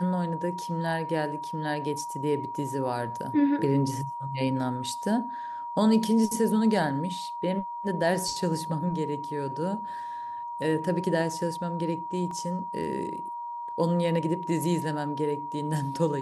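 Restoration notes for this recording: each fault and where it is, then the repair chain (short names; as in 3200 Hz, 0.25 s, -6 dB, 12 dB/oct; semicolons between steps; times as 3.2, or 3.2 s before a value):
tone 950 Hz -33 dBFS
12.31 gap 2.8 ms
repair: notch 950 Hz, Q 30; interpolate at 12.31, 2.8 ms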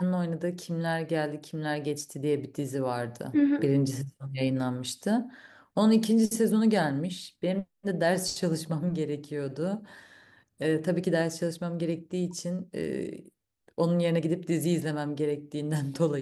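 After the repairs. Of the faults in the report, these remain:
none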